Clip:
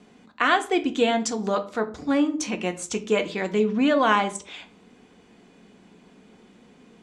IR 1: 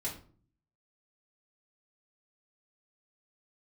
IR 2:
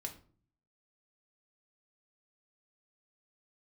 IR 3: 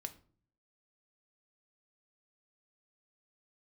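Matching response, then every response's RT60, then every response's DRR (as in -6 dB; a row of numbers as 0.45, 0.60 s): 3; 0.45, 0.45, 0.45 s; -6.5, 2.0, 7.0 dB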